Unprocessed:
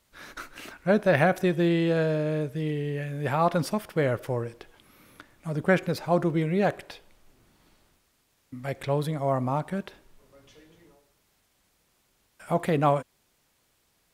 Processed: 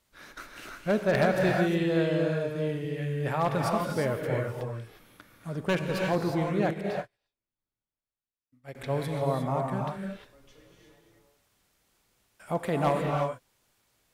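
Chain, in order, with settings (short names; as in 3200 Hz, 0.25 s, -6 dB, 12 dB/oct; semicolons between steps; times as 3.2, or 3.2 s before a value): wavefolder -13.5 dBFS; non-linear reverb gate 0.38 s rising, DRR 0.5 dB; 6.71–8.75 upward expander 2.5:1, over -46 dBFS; gain -4 dB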